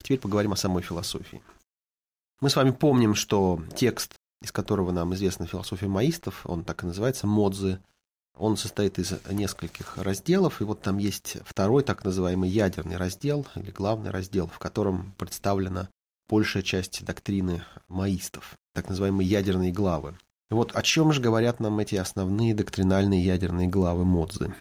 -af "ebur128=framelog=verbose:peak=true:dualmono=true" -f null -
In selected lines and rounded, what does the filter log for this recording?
Integrated loudness:
  I:         -23.6 LUFS
  Threshold: -33.9 LUFS
Loudness range:
  LRA:         4.3 LU
  Threshold: -44.1 LUFS
  LRA low:   -26.1 LUFS
  LRA high:  -21.8 LUFS
True peak:
  Peak:      -10.2 dBFS